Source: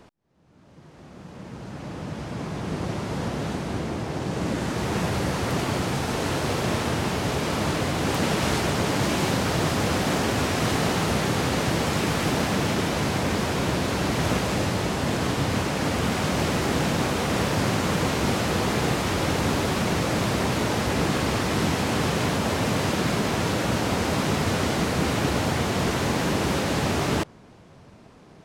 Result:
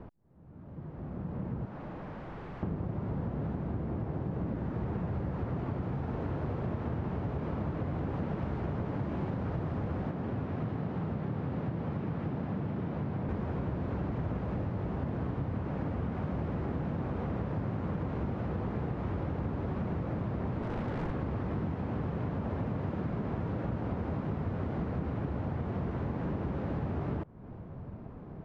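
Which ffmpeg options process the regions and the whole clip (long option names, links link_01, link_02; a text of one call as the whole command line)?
ffmpeg -i in.wav -filter_complex "[0:a]asettb=1/sr,asplit=3[link_01][link_02][link_03];[link_01]atrim=end=1.654[link_04];[link_02]atrim=start=1.65:end=2.63,asetpts=PTS-STARTPTS,afade=type=in:duration=0.004:curve=qsin,afade=type=out:start_time=0.976:duration=0.004:curve=qsin,highpass=frequency=540:poles=1,aeval=exprs='0.0112*(abs(mod(val(0)/0.0112+3,4)-2)-1)':channel_layout=same[link_05];[link_03]atrim=start=2.626[link_06];[link_04][link_05]acrossfade=duration=0.004:curve1=hsin:curve2=qsin[link_07];[link_07][link_06]acrossfade=duration=0.004:curve1=qsin:curve2=hsin,asettb=1/sr,asplit=3[link_08][link_09][link_10];[link_08]atrim=end=10.114[link_11];[link_09]atrim=start=10.11:end=13.29,asetpts=PTS-STARTPTS,afade=type=in:duration=0.004:curve=qsin,afade=type=out:start_time=3.176:duration=0.004:curve=qsin,highpass=120,equalizer=frequency=11000:width_type=o:width=1.8:gain=-11.5,acrossover=split=190|3000[link_12][link_13][link_14];[link_13]acompressor=threshold=-37dB:ratio=1.5:attack=3.2:release=140:knee=2.83:detection=peak[link_15];[link_12][link_15][link_14]amix=inputs=3:normalize=0[link_16];[link_10]atrim=start=13.286[link_17];[link_11][link_16]acrossfade=duration=0.004:curve1=hsin:curve2=qsin[link_18];[link_18][link_17]acrossfade=duration=0.004:curve1=qsin:curve2=hsin,asettb=1/sr,asplit=3[link_19][link_20][link_21];[link_19]atrim=end=20.624[link_22];[link_20]atrim=start=20.62:end=21.12,asetpts=PTS-STARTPTS,afade=type=in:duration=0.004:curve=qsin,afade=type=out:start_time=0.496:duration=0.004:curve=qsin,highpass=frequency=90:width=0.5412,highpass=frequency=90:width=1.3066,aeval=exprs='(mod(7.94*val(0)+1,2)-1)/7.94':channel_layout=same[link_23];[link_21]atrim=start=21.116[link_24];[link_22][link_23]acrossfade=duration=0.004:curve1=hsin:curve2=qsin[link_25];[link_25][link_24]acrossfade=duration=0.004:curve1=qsin:curve2=hsin,lowpass=1300,lowshelf=frequency=200:gain=11,acompressor=threshold=-32dB:ratio=6" out.wav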